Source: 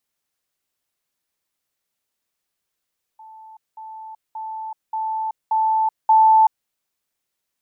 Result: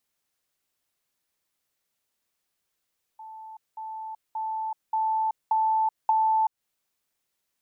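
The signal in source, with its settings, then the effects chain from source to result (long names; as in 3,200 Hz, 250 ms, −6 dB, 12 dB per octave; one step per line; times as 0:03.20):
level staircase 879 Hz −39.5 dBFS, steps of 6 dB, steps 6, 0.38 s 0.20 s
downward compressor 6 to 1, threshold −22 dBFS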